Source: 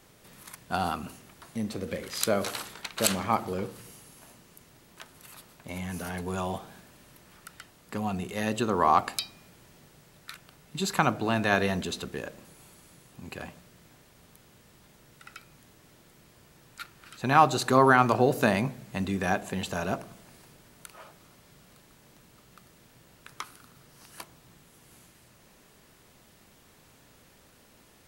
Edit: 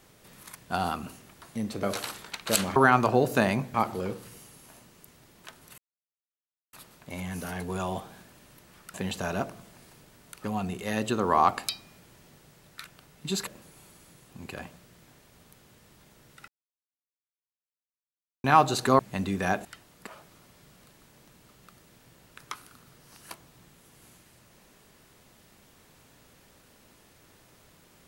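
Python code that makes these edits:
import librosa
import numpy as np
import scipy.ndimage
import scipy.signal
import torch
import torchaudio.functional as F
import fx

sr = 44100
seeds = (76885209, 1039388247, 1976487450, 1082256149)

y = fx.edit(x, sr, fx.cut(start_s=1.83, length_s=0.51),
    fx.insert_silence(at_s=5.31, length_s=0.95),
    fx.swap(start_s=7.52, length_s=0.42, other_s=19.46, other_length_s=1.5),
    fx.cut(start_s=10.97, length_s=1.33),
    fx.silence(start_s=15.31, length_s=1.96),
    fx.move(start_s=17.82, length_s=0.98, to_s=3.27), tone=tone)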